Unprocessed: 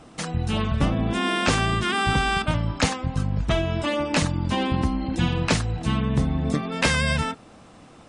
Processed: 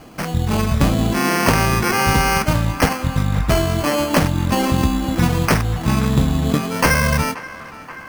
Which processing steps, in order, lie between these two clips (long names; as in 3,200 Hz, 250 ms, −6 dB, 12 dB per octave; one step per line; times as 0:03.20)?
decimation without filtering 12×
on a send: feedback echo with a band-pass in the loop 530 ms, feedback 80%, band-pass 1,400 Hz, level −14.5 dB
on the sum: level +6 dB